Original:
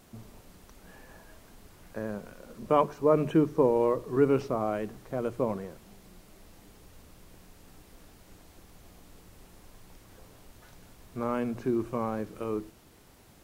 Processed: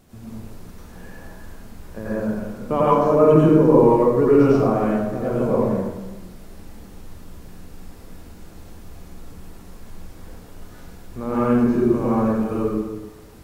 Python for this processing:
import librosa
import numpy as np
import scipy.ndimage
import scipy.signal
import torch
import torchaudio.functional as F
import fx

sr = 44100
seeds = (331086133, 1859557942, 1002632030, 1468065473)

y = fx.low_shelf(x, sr, hz=370.0, db=7.5)
y = fx.rev_plate(y, sr, seeds[0], rt60_s=1.2, hf_ratio=0.65, predelay_ms=80, drr_db=-9.0)
y = y * 10.0 ** (-2.0 / 20.0)